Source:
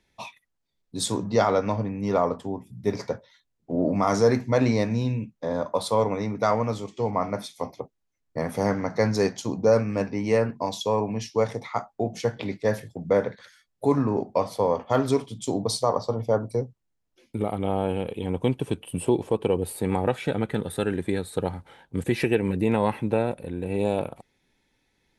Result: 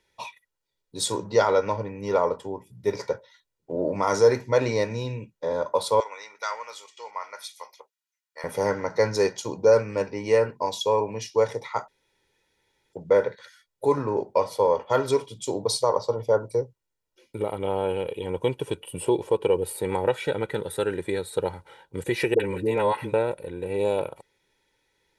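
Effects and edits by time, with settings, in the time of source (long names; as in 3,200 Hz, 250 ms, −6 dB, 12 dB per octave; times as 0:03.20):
0:06.00–0:08.44: high-pass filter 1,400 Hz
0:11.88–0:12.93: fill with room tone
0:22.34–0:23.14: all-pass dispersion highs, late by 58 ms, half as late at 550 Hz
whole clip: low-shelf EQ 160 Hz −10.5 dB; comb filter 2.1 ms, depth 58%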